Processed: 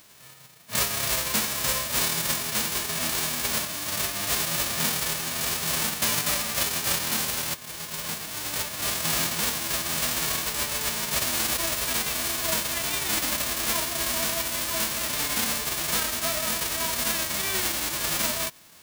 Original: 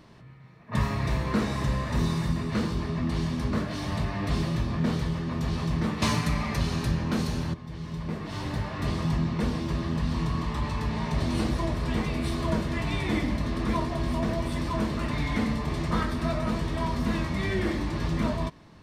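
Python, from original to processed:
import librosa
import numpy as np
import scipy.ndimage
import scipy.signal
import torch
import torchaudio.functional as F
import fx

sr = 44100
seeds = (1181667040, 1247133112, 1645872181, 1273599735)

y = fx.envelope_flatten(x, sr, power=0.1)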